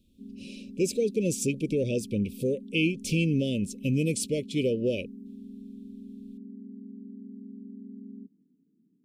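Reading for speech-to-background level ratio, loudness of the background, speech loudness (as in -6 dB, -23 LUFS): 16.0 dB, -44.5 LUFS, -28.5 LUFS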